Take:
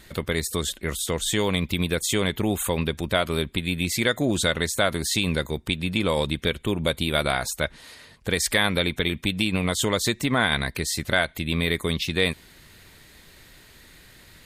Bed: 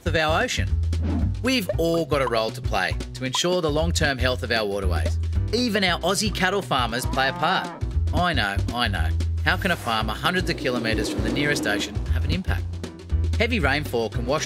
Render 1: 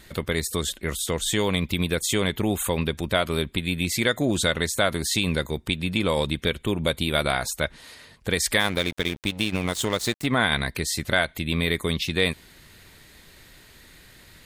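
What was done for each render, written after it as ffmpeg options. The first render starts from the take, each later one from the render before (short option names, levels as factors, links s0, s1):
-filter_complex "[0:a]asplit=3[s0][s1][s2];[s0]afade=t=out:st=8.59:d=0.02[s3];[s1]aeval=exprs='sgn(val(0))*max(abs(val(0))-0.0211,0)':c=same,afade=t=in:st=8.59:d=0.02,afade=t=out:st=10.25:d=0.02[s4];[s2]afade=t=in:st=10.25:d=0.02[s5];[s3][s4][s5]amix=inputs=3:normalize=0"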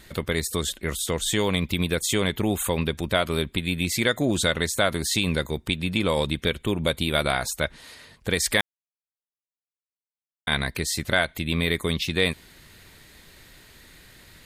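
-filter_complex "[0:a]asplit=3[s0][s1][s2];[s0]atrim=end=8.61,asetpts=PTS-STARTPTS,afade=t=out:st=8.606:d=0.004:c=hsin[s3];[s1]atrim=start=8.61:end=10.47,asetpts=PTS-STARTPTS,volume=0[s4];[s2]atrim=start=10.47,asetpts=PTS-STARTPTS,afade=t=in:d=0.004:c=hsin[s5];[s3][s4][s5]concat=n=3:v=0:a=1"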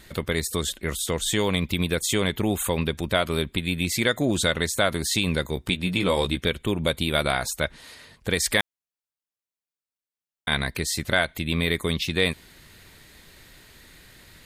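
-filter_complex "[0:a]asettb=1/sr,asplit=3[s0][s1][s2];[s0]atrim=end=5.554[s3];[s1]atrim=start=5.55:end=6.41,asetpts=PTS-STARTPTS,afade=t=in:d=0.004:c=qsin,afade=t=out:st=0.856:d=0.004:c=qsin,asplit=2[s4][s5];[s5]adelay=16,volume=0.501[s6];[s4][s6]amix=inputs=2:normalize=0,atrim=end_sample=37926[s7];[s2]atrim=start=6.406[s8];[s3][s7]acrossfade=d=0.004:c1=hsin:c2=qsin[s9];[s9][s8]acrossfade=d=0.004:c1=qsin:c2=hsin"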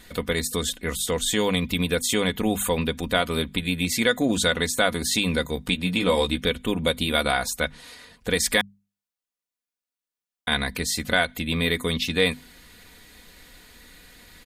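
-af "bandreject=f=50:t=h:w=6,bandreject=f=100:t=h:w=6,bandreject=f=150:t=h:w=6,bandreject=f=200:t=h:w=6,bandreject=f=250:t=h:w=6,aecho=1:1:4.1:0.54"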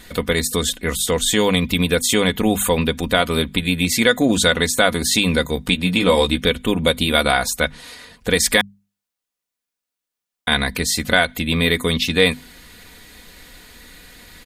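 -af "volume=2,alimiter=limit=0.891:level=0:latency=1"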